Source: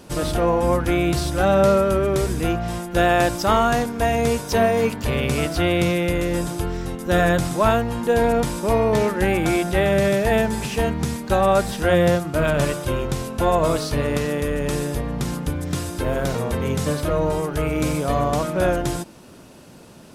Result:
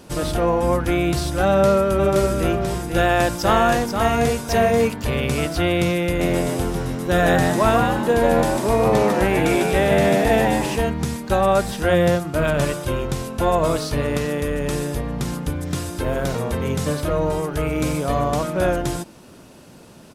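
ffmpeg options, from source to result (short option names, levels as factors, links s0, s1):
-filter_complex "[0:a]asplit=3[s0][s1][s2];[s0]afade=t=out:st=1.98:d=0.02[s3];[s1]aecho=1:1:488:0.531,afade=t=in:st=1.98:d=0.02,afade=t=out:st=4.87:d=0.02[s4];[s2]afade=t=in:st=4.87:d=0.02[s5];[s3][s4][s5]amix=inputs=3:normalize=0,asplit=3[s6][s7][s8];[s6]afade=t=out:st=6.19:d=0.02[s9];[s7]asplit=6[s10][s11][s12][s13][s14][s15];[s11]adelay=149,afreqshift=86,volume=0.668[s16];[s12]adelay=298,afreqshift=172,volume=0.234[s17];[s13]adelay=447,afreqshift=258,volume=0.0822[s18];[s14]adelay=596,afreqshift=344,volume=0.0285[s19];[s15]adelay=745,afreqshift=430,volume=0.01[s20];[s10][s16][s17][s18][s19][s20]amix=inputs=6:normalize=0,afade=t=in:st=6.19:d=0.02,afade=t=out:st=10.76:d=0.02[s21];[s8]afade=t=in:st=10.76:d=0.02[s22];[s9][s21][s22]amix=inputs=3:normalize=0"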